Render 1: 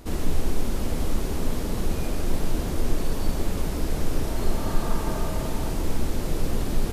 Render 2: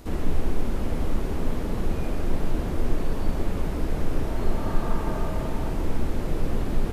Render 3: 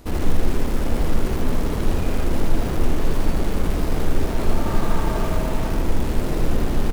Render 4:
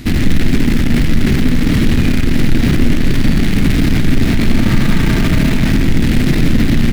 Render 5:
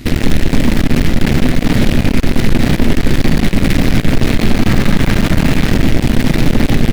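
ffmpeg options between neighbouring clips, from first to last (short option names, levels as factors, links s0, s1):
-filter_complex "[0:a]acrossover=split=2900[s0][s1];[s1]acompressor=threshold=0.00282:ratio=4:attack=1:release=60[s2];[s0][s2]amix=inputs=2:normalize=0"
-filter_complex "[0:a]asplit=2[s0][s1];[s1]acrusher=bits=4:mix=0:aa=0.000001,volume=0.473[s2];[s0][s2]amix=inputs=2:normalize=0,aecho=1:1:79:0.631"
-filter_complex "[0:a]asplit=2[s0][s1];[s1]aeval=exprs='0.075*(abs(mod(val(0)/0.075+3,4)-2)-1)':c=same,volume=0.501[s2];[s0][s2]amix=inputs=2:normalize=0,equalizer=f=125:t=o:w=1:g=8,equalizer=f=250:t=o:w=1:g=10,equalizer=f=500:t=o:w=1:g=-9,equalizer=f=1000:t=o:w=1:g=-8,equalizer=f=2000:t=o:w=1:g=10,equalizer=f=4000:t=o:w=1:g=6,acontrast=79"
-af "aeval=exprs='0.891*(cos(1*acos(clip(val(0)/0.891,-1,1)))-cos(1*PI/2))+0.178*(cos(6*acos(clip(val(0)/0.891,-1,1)))-cos(6*PI/2))':c=same,volume=0.891"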